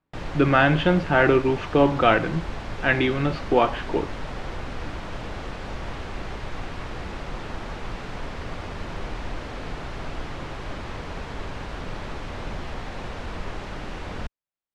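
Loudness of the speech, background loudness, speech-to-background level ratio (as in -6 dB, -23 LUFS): -21.0 LUFS, -35.0 LUFS, 14.0 dB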